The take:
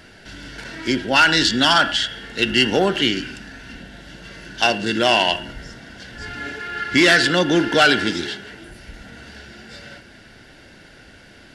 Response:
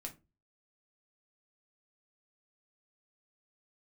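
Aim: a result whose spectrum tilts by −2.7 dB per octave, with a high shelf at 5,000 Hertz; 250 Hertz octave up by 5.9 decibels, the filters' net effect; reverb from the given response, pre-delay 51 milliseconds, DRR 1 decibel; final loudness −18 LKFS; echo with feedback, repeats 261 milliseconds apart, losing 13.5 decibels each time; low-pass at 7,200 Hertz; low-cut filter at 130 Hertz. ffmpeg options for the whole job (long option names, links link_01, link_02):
-filter_complex "[0:a]highpass=130,lowpass=7200,equalizer=frequency=250:width_type=o:gain=8,highshelf=frequency=5000:gain=-5.5,aecho=1:1:261|522:0.211|0.0444,asplit=2[link_01][link_02];[1:a]atrim=start_sample=2205,adelay=51[link_03];[link_02][link_03]afir=irnorm=-1:irlink=0,volume=2.5dB[link_04];[link_01][link_04]amix=inputs=2:normalize=0,volume=-5dB"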